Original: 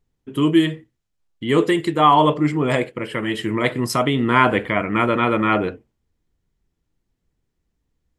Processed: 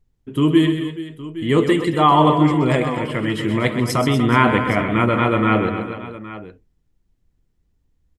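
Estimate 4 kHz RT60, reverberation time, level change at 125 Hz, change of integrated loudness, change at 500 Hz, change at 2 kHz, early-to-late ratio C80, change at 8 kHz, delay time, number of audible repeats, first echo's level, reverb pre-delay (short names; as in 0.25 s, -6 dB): none, none, +5.0 dB, +1.0 dB, +1.0 dB, 0.0 dB, none, 0.0 dB, 0.129 s, 4, -9.0 dB, none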